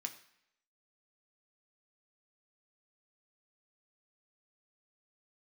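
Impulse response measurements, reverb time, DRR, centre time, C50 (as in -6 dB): 0.75 s, 4.0 dB, 10 ms, 12.5 dB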